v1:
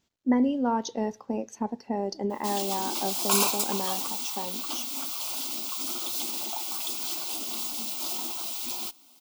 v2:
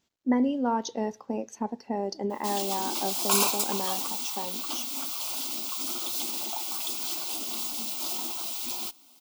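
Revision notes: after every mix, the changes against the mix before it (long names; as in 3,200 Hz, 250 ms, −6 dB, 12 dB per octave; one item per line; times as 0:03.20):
speech: add low-shelf EQ 130 Hz −6 dB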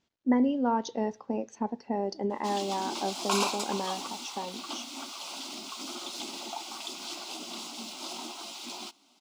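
master: add high-frequency loss of the air 85 metres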